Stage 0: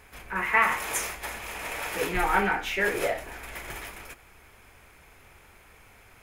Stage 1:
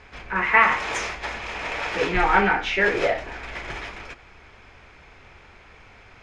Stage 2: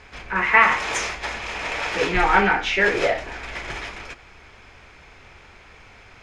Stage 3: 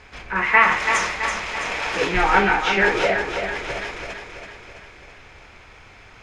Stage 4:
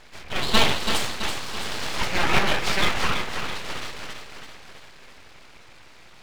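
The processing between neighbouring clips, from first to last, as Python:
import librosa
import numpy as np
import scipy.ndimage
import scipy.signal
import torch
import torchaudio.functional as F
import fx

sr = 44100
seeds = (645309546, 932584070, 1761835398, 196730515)

y1 = scipy.signal.sosfilt(scipy.signal.butter(4, 5500.0, 'lowpass', fs=sr, output='sos'), x)
y1 = y1 * 10.0 ** (5.5 / 20.0)
y2 = fx.high_shelf(y1, sr, hz=4900.0, db=7.0)
y2 = y2 * 10.0 ** (1.0 / 20.0)
y3 = fx.echo_feedback(y2, sr, ms=331, feedback_pct=55, wet_db=-7.0)
y4 = np.abs(y3)
y4 = y4 * 10.0 ** (-1.0 / 20.0)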